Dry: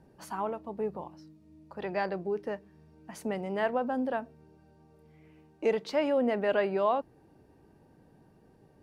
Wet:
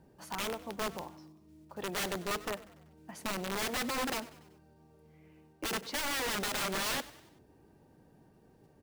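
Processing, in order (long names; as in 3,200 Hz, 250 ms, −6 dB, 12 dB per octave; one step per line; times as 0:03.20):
one scale factor per block 5 bits
wrap-around overflow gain 27 dB
echo with shifted repeats 96 ms, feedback 50%, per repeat +37 Hz, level −18 dB
level −2 dB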